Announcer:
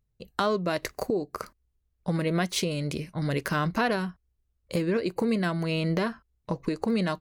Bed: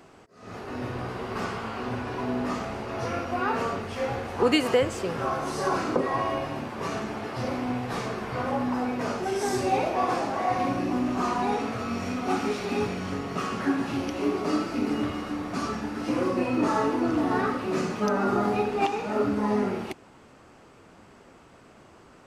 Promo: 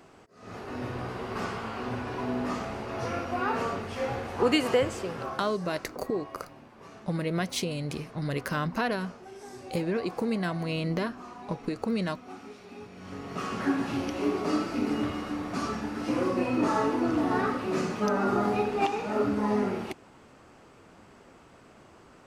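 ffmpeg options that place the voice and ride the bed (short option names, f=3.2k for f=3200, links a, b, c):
-filter_complex "[0:a]adelay=5000,volume=-3dB[a];[1:a]volume=14dB,afade=t=out:st=4.87:d=0.71:silence=0.16788,afade=t=in:st=12.91:d=0.71:silence=0.158489[b];[a][b]amix=inputs=2:normalize=0"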